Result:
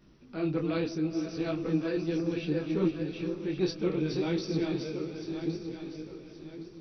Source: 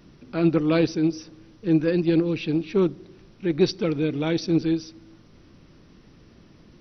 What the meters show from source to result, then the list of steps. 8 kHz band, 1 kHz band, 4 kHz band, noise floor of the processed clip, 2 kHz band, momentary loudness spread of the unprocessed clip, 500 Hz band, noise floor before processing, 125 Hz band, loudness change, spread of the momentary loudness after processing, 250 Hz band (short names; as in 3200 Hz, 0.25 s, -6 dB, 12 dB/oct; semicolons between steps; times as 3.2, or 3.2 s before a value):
n/a, -6.5 dB, -6.5 dB, -51 dBFS, -6.5 dB, 7 LU, -7.0 dB, -53 dBFS, -7.0 dB, -8.5 dB, 13 LU, -7.0 dB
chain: regenerating reverse delay 0.558 s, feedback 55%, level -4 dB; diffused feedback echo 0.501 s, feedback 41%, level -12.5 dB; detuned doubles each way 23 cents; gain -5 dB